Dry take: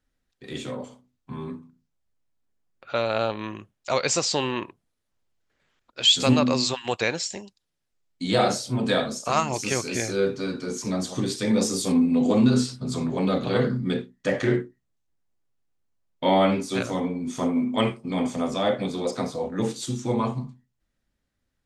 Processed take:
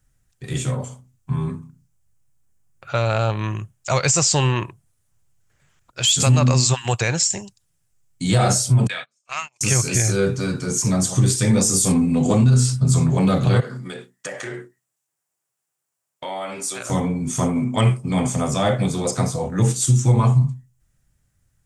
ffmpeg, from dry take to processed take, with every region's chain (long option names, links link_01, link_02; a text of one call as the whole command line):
ffmpeg -i in.wav -filter_complex "[0:a]asettb=1/sr,asplit=3[link_01][link_02][link_03];[link_01]atrim=end=8.874[link_04];[link_02]atrim=start=8.87:end=9.61,asetpts=PTS-STARTPTS,afade=type=in:duration=0.004:curve=qsin,afade=type=out:start_time=0.736:duration=0.004:curve=qsin,bandpass=frequency=2400:width_type=q:width=2.3,agate=range=-32dB:threshold=-39dB:ratio=16:release=100:detection=peak[link_05];[link_03]atrim=start=9.606[link_06];[link_04][link_05]acrossfade=duration=0.004:curve1=hsin:curve2=qsin[link_07];[link_07][link_06]acrossfade=duration=0.004:curve1=qsin:curve2=hsin,asettb=1/sr,asplit=3[link_08][link_09][link_10];[link_08]atrim=end=13.604[link_11];[link_09]atrim=start=13.6:end=16.9,asetpts=PTS-STARTPTS,afade=type=in:duration=0.004:curve=qsin,afade=type=out:start_time=3.296:duration=0.004:curve=qsin,highpass=450,bandreject=frequency=6300:width=21,acompressor=threshold=-34dB:ratio=3:attack=3.2:release=140:knee=1:detection=peak[link_12];[link_10]atrim=start=16.896[link_13];[link_11][link_12]acrossfade=duration=0.004:curve1=hsin:curve2=qsin[link_14];[link_14][link_13]acrossfade=duration=0.004:curve1=qsin:curve2=hsin,acontrast=31,equalizer=frequency=125:width_type=o:width=1:gain=10,equalizer=frequency=250:width_type=o:width=1:gain=-11,equalizer=frequency=500:width_type=o:width=1:gain=-7,equalizer=frequency=1000:width_type=o:width=1:gain=-4,equalizer=frequency=2000:width_type=o:width=1:gain=-4,equalizer=frequency=4000:width_type=o:width=1:gain=-10,equalizer=frequency=8000:width_type=o:width=1:gain=7,alimiter=level_in=13.5dB:limit=-1dB:release=50:level=0:latency=1,volume=-7dB" out.wav